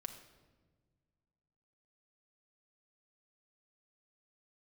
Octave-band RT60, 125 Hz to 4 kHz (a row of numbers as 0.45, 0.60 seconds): 2.5, 2.2, 1.7, 1.2, 1.0, 0.90 seconds